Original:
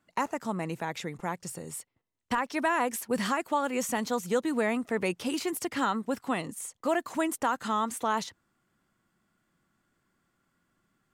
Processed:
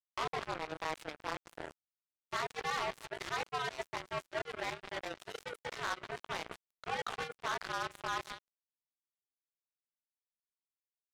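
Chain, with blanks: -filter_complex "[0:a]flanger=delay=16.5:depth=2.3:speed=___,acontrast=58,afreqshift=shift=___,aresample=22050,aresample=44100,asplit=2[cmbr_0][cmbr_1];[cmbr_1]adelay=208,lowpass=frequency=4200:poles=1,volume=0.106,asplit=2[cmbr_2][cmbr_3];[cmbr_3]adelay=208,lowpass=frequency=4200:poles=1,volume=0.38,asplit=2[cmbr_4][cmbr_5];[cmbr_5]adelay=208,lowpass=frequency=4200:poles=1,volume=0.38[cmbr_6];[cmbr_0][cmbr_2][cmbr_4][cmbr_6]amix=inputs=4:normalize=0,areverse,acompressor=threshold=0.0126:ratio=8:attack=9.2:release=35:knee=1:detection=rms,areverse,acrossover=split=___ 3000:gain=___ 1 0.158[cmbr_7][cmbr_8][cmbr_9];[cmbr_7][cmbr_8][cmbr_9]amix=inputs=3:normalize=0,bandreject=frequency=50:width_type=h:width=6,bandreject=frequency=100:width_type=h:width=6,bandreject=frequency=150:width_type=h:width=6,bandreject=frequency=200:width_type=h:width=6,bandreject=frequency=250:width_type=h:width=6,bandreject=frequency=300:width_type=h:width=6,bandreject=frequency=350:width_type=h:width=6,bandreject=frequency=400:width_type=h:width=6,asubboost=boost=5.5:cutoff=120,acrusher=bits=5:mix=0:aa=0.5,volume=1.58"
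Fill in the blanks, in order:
0.59, 150, 300, 0.0708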